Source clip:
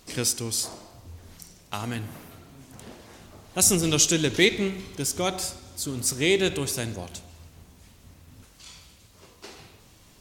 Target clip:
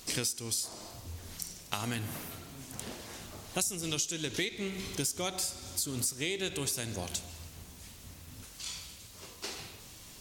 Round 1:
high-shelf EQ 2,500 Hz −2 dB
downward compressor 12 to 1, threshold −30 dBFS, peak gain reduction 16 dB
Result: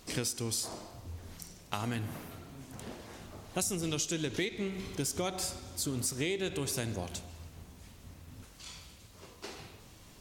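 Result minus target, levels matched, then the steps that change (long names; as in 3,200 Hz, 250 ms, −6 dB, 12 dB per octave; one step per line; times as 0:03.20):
4,000 Hz band −2.5 dB
change: high-shelf EQ 2,500 Hz +8 dB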